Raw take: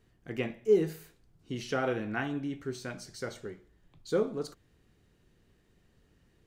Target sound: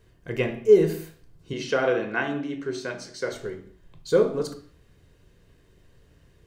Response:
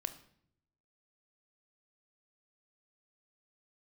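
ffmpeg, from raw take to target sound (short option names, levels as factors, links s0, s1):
-filter_complex "[0:a]asettb=1/sr,asplit=3[s0][s1][s2];[s0]atrim=end=1.534[s3];[s1]atrim=start=1.53:end=3.32,asetpts=PTS-STARTPTS,afade=t=in:d=0.004:c=qsin,afade=t=out:st=1.786:d=0.004:c=qsin,acrossover=split=170 7600:gain=0.112 1 0.224[s4][s5][s6];[s4][s5][s6]amix=inputs=3:normalize=0[s7];[s2]atrim=start=3.316[s8];[s3][s7]acrossfade=d=0.004:c1=hsin:c2=qsin[s9];[s9][s8]acrossfade=d=0.004:c1=qsin:c2=hsin[s10];[1:a]atrim=start_sample=2205,afade=t=out:st=0.3:d=0.01,atrim=end_sample=13671[s11];[s10][s11]afir=irnorm=-1:irlink=0,volume=2.66"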